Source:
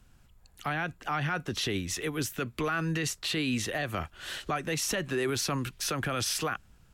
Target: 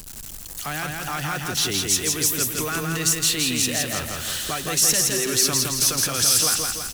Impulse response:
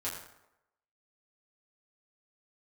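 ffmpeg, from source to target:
-filter_complex "[0:a]aeval=exprs='val(0)+0.5*0.0112*sgn(val(0))':c=same,bass=f=250:g=0,treble=f=4000:g=15,asplit=2[s0][s1];[s1]aecho=0:1:166|332|498|664|830|996|1162:0.708|0.382|0.206|0.111|0.0602|0.0325|0.0176[s2];[s0][s2]amix=inputs=2:normalize=0"

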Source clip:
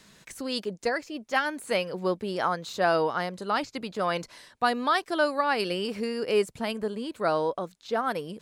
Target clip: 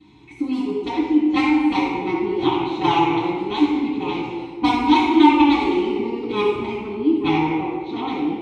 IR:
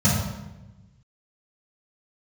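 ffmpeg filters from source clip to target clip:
-filter_complex "[0:a]aeval=exprs='0.299*(cos(1*acos(clip(val(0)/0.299,-1,1)))-cos(1*PI/2))+0.119*(cos(3*acos(clip(val(0)/0.299,-1,1)))-cos(3*PI/2))':c=same,aeval=exprs='0.355*sin(PI/2*2.24*val(0)/0.355)':c=same,asplit=3[s0][s1][s2];[s0]bandpass=f=300:t=q:w=8,volume=1[s3];[s1]bandpass=f=870:t=q:w=8,volume=0.501[s4];[s2]bandpass=f=2240:t=q:w=8,volume=0.355[s5];[s3][s4][s5]amix=inputs=3:normalize=0[s6];[1:a]atrim=start_sample=2205,asetrate=26019,aresample=44100[s7];[s6][s7]afir=irnorm=-1:irlink=0,volume=1.78"

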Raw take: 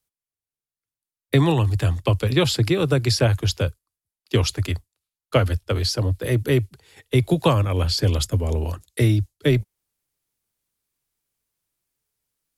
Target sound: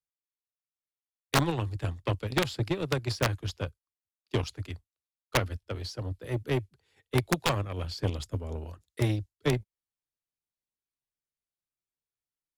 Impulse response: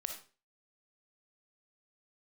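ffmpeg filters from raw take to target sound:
-af "aeval=exprs='0.596*(cos(1*acos(clip(val(0)/0.596,-1,1)))-cos(1*PI/2))+0.168*(cos(3*acos(clip(val(0)/0.596,-1,1)))-cos(3*PI/2))':c=same,aeval=exprs='(mod(3.98*val(0)+1,2)-1)/3.98':c=same,highshelf=f=9600:g=-11"

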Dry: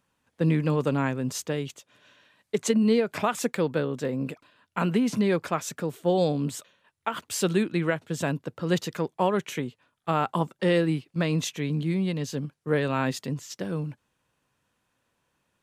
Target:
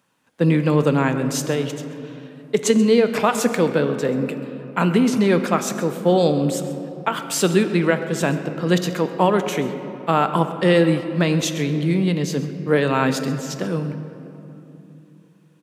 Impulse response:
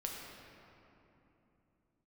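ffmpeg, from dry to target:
-filter_complex "[0:a]highpass=140,aecho=1:1:133:0.126,asplit=2[s0][s1];[1:a]atrim=start_sample=2205[s2];[s1][s2]afir=irnorm=-1:irlink=0,volume=0.631[s3];[s0][s3]amix=inputs=2:normalize=0,volume=1.58"

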